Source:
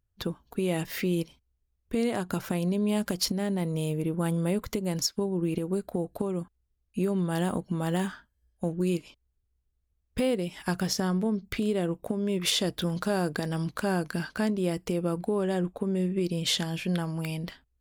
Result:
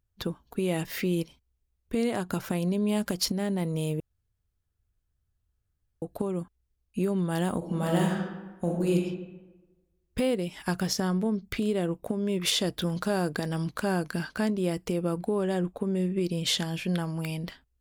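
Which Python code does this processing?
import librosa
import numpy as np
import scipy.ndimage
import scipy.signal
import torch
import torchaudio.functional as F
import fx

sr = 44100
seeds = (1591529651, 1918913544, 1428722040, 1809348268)

y = fx.reverb_throw(x, sr, start_s=7.57, length_s=1.38, rt60_s=1.2, drr_db=-0.5)
y = fx.edit(y, sr, fx.room_tone_fill(start_s=4.0, length_s=2.02), tone=tone)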